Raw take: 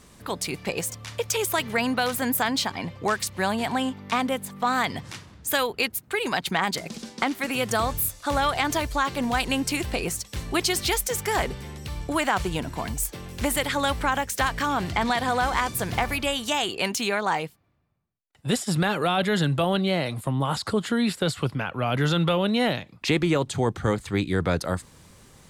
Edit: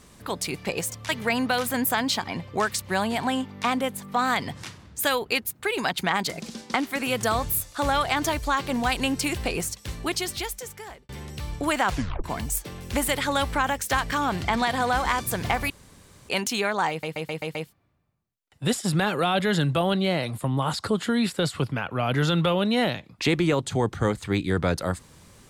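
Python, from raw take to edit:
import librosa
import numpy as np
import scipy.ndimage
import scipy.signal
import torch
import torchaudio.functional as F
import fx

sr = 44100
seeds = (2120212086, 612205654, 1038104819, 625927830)

y = fx.edit(x, sr, fx.cut(start_s=1.09, length_s=0.48),
    fx.fade_out_span(start_s=10.13, length_s=1.44),
    fx.tape_stop(start_s=12.38, length_s=0.34),
    fx.room_tone_fill(start_s=16.18, length_s=0.59),
    fx.stutter(start_s=17.38, slice_s=0.13, count=6), tone=tone)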